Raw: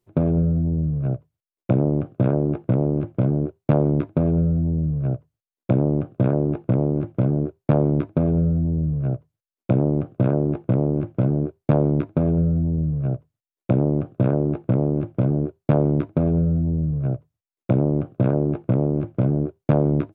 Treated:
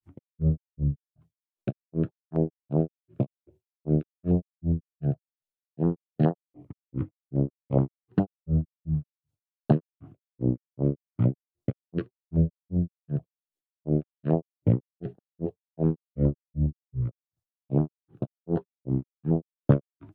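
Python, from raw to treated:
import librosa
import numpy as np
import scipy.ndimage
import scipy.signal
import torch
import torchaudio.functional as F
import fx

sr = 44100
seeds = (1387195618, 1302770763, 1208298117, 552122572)

y = fx.granulator(x, sr, seeds[0], grain_ms=194.0, per_s=2.6, spray_ms=26.0, spread_st=3)
y = fx.filter_held_notch(y, sr, hz=7.2, low_hz=510.0, high_hz=2300.0)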